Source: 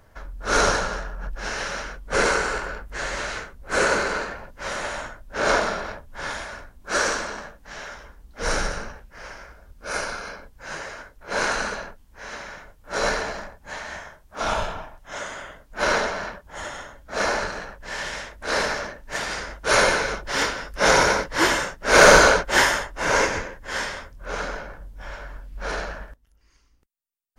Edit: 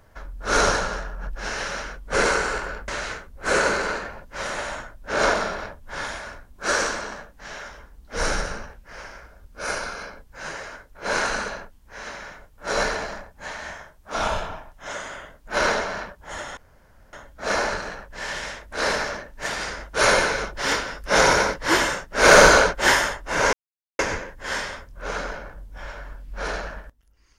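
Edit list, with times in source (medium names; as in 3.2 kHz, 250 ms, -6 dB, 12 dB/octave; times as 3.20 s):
2.88–3.14 s: delete
16.83 s: insert room tone 0.56 s
23.23 s: insert silence 0.46 s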